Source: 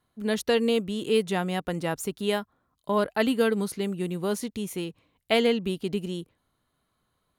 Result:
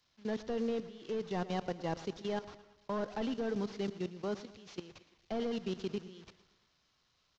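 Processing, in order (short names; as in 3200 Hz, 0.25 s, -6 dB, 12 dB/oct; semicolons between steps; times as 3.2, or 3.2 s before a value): delta modulation 32 kbps, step -39 dBFS; gate -42 dBFS, range -8 dB; low shelf 480 Hz -4.5 dB; level quantiser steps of 16 dB; dynamic EQ 2300 Hz, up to -5 dB, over -52 dBFS, Q 1; on a send: feedback echo 0.114 s, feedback 59%, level -15.5 dB; on the sum: three-band expander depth 40%; gain -2 dB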